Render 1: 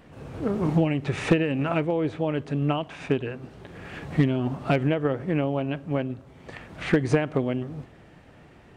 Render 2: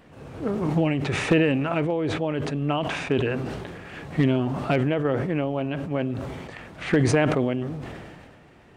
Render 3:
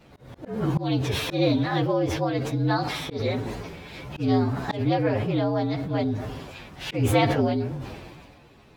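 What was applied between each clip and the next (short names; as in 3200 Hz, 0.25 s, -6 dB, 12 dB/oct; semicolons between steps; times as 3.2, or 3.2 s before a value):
low shelf 180 Hz -3.5 dB; sustainer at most 30 dB/s
inharmonic rescaling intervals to 116%; auto swell 0.17 s; gain +3 dB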